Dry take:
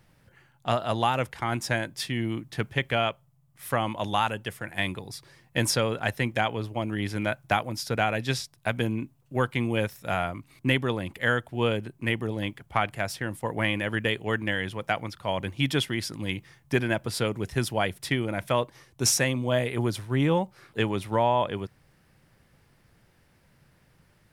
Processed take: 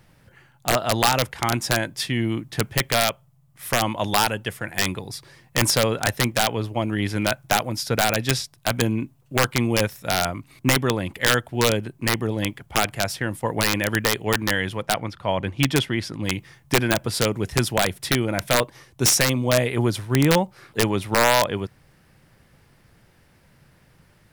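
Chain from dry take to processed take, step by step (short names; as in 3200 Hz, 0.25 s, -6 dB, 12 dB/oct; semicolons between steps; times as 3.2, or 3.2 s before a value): 14.82–16.25 LPF 3100 Hz 6 dB/oct; wrapped overs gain 14 dB; gain +5.5 dB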